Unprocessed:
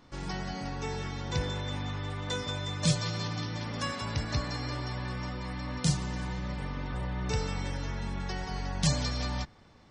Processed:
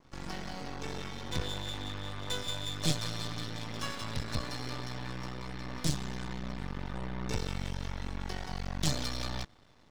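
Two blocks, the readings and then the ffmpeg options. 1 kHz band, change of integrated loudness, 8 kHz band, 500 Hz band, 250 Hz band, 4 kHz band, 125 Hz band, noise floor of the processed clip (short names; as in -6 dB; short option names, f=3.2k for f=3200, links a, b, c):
-4.0 dB, -3.5 dB, -2.5 dB, -4.0 dB, -4.0 dB, -1.0 dB, -5.5 dB, -59 dBFS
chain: -af "adynamicequalizer=threshold=0.00224:dfrequency=3500:dqfactor=3.7:tfrequency=3500:tqfactor=3.7:attack=5:release=100:ratio=0.375:range=3:mode=boostabove:tftype=bell,aeval=exprs='max(val(0),0)':c=same"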